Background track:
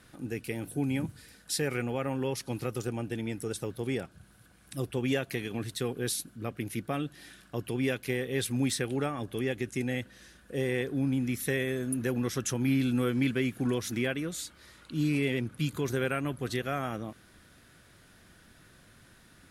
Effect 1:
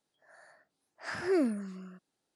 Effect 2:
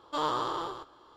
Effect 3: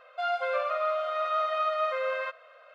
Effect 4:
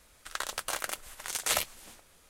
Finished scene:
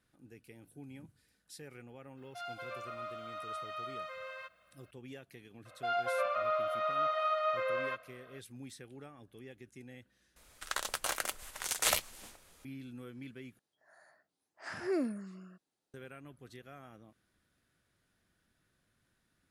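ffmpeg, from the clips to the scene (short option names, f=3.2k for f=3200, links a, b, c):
-filter_complex "[3:a]asplit=2[a][b];[0:a]volume=-19.5dB[c];[a]aemphasis=mode=production:type=riaa[d];[c]asplit=3[e][f][g];[e]atrim=end=10.364[h];[4:a]atrim=end=2.29,asetpts=PTS-STARTPTS,volume=-1dB[i];[f]atrim=start=12.646:end=13.594[j];[1:a]atrim=end=2.35,asetpts=PTS-STARTPTS,volume=-5dB[k];[g]atrim=start=15.936[l];[d]atrim=end=2.74,asetpts=PTS-STARTPTS,volume=-14.5dB,afade=t=in:d=0.004:c=hsin,afade=t=out:st=2.736:d=0.004:c=hsin,adelay=2170[m];[b]atrim=end=2.74,asetpts=PTS-STARTPTS,volume=-4dB,afade=t=in:d=0.004:c=hsin,afade=t=out:st=2.736:d=0.004:c=hsin,adelay=249165S[n];[h][i]acrossfade=d=0.004:c1=hsin:c2=hsin[o];[o][j]acrossfade=d=0.004:c1=hsin:c2=hsin[p];[p][k]acrossfade=d=0.004:c1=hsin:c2=hsin[q];[q][l]acrossfade=d=0.004:c1=hsin:c2=hsin[r];[r][m][n]amix=inputs=3:normalize=0"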